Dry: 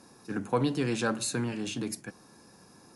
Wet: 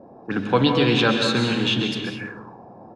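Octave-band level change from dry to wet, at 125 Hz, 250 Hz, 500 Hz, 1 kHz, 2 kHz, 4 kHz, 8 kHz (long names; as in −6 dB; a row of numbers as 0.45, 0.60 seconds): +10.0, +10.0, +10.5, +10.5, +13.0, +17.0, −3.0 decibels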